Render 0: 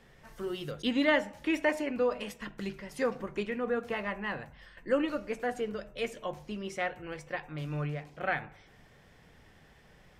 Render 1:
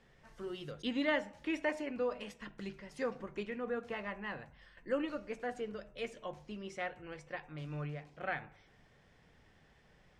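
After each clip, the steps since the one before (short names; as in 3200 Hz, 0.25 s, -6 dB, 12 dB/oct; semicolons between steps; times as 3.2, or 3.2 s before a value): LPF 8100 Hz 12 dB/oct; gain -6.5 dB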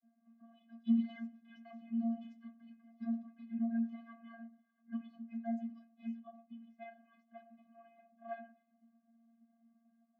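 metallic resonator 240 Hz, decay 0.24 s, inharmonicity 0.008; low-pass opened by the level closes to 1200 Hz, open at -44 dBFS; vocoder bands 32, square 230 Hz; gain +10.5 dB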